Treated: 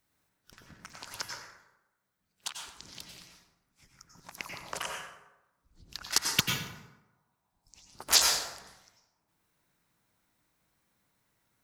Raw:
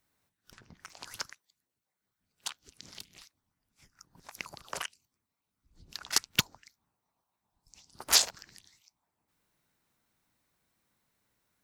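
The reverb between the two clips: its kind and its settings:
dense smooth reverb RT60 1 s, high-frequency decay 0.55×, pre-delay 80 ms, DRR 0.5 dB

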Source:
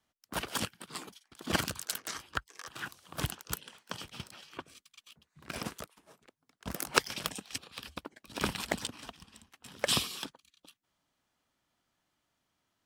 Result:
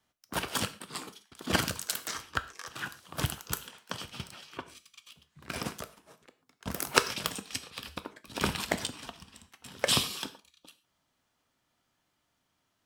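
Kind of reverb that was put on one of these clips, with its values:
reverb whose tail is shaped and stops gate 160 ms falling, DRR 10 dB
level +2.5 dB

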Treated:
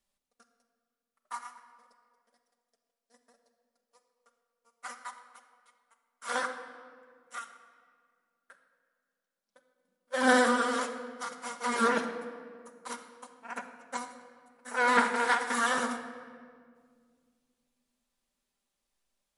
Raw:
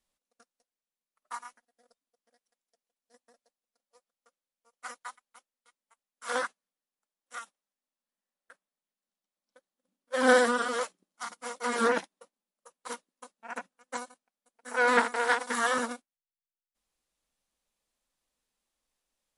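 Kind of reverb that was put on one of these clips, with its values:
rectangular room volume 3,400 cubic metres, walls mixed, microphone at 1.2 metres
level −1 dB

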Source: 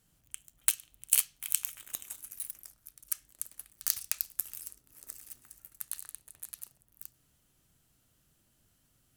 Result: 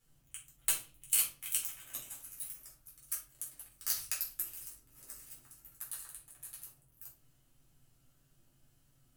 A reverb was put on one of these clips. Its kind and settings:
rectangular room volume 230 cubic metres, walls furnished, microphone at 4.1 metres
level −9 dB

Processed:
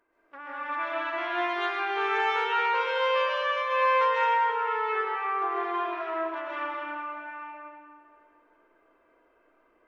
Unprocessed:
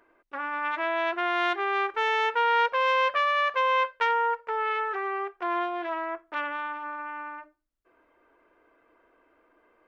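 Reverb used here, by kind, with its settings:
comb and all-pass reverb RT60 2.2 s, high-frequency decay 0.8×, pre-delay 95 ms, DRR −8.5 dB
level −10 dB

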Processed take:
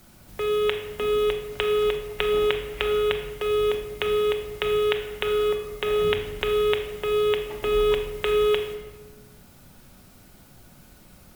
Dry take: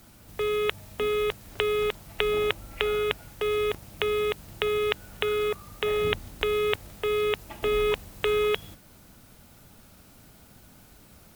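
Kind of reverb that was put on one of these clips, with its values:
rectangular room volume 830 cubic metres, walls mixed, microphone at 0.99 metres

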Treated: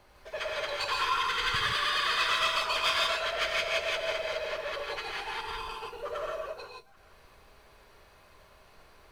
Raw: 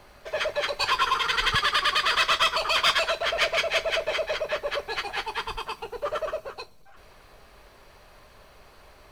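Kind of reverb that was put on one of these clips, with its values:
reverb whose tail is shaped and stops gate 190 ms rising, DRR −1.5 dB
level −8.5 dB

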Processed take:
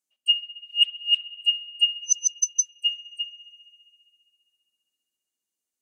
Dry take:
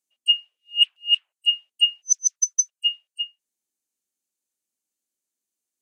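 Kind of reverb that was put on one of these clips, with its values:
spring reverb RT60 2.5 s, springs 53 ms, chirp 40 ms, DRR 12.5 dB
level −2 dB

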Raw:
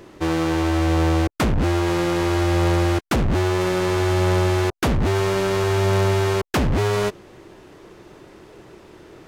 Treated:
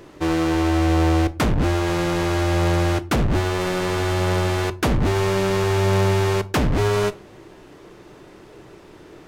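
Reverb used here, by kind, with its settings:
rectangular room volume 280 cubic metres, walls furnished, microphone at 0.41 metres

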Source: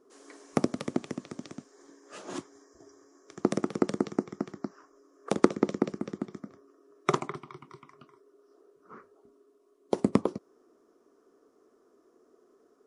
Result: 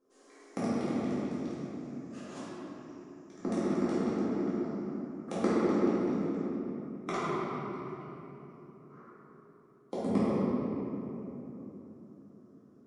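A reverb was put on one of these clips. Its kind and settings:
rectangular room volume 220 cubic metres, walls hard, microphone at 2.1 metres
level −15 dB

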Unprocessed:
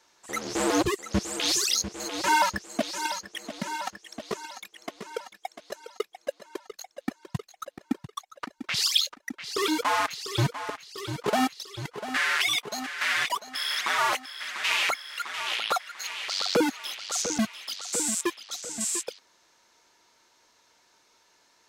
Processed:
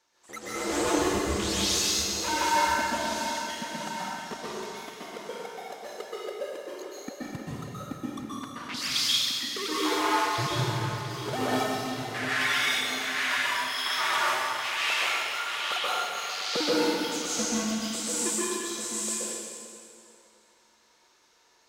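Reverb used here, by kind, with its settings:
dense smooth reverb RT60 2.5 s, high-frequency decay 0.85×, pre-delay 115 ms, DRR −9 dB
level −9 dB

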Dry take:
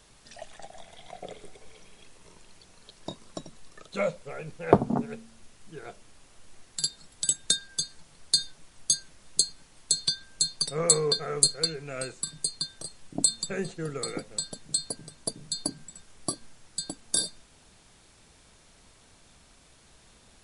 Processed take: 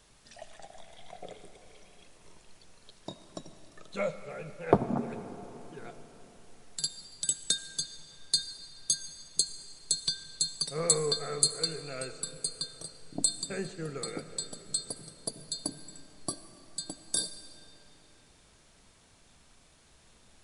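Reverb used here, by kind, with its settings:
comb and all-pass reverb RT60 4 s, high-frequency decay 0.7×, pre-delay 35 ms, DRR 11 dB
level −4 dB

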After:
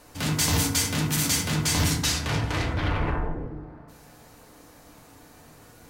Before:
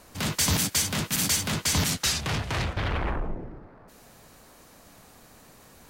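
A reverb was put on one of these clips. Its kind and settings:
feedback delay network reverb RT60 0.85 s, low-frequency decay 1.4×, high-frequency decay 0.4×, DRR 0.5 dB
level −1.5 dB

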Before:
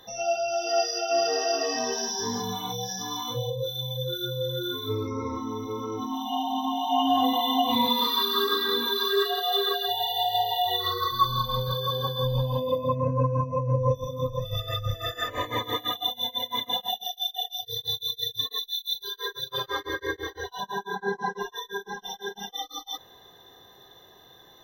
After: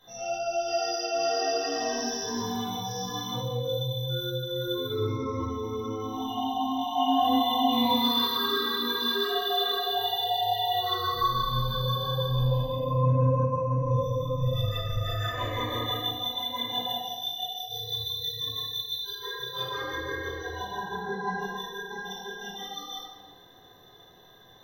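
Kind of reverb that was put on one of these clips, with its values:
rectangular room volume 1,000 cubic metres, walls mixed, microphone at 7.6 metres
level −14.5 dB

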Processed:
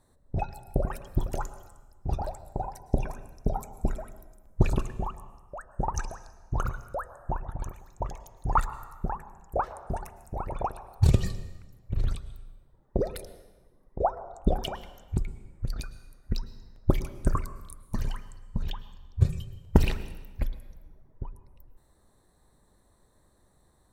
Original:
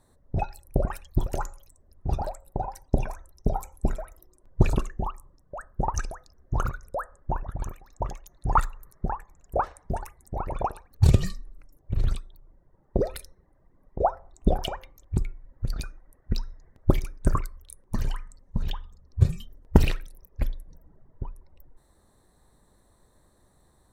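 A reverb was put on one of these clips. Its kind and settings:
dense smooth reverb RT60 1.2 s, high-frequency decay 0.85×, pre-delay 95 ms, DRR 14 dB
level −2.5 dB

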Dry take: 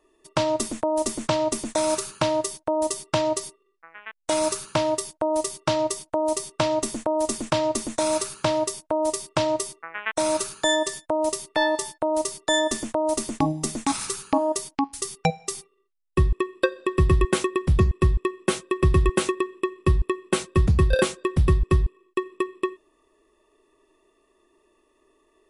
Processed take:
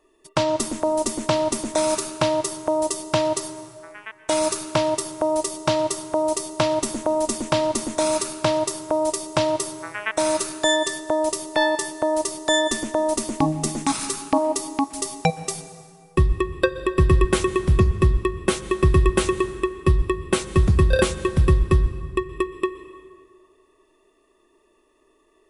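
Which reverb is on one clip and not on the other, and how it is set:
dense smooth reverb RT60 2 s, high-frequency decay 0.65×, pre-delay 110 ms, DRR 13 dB
level +2 dB

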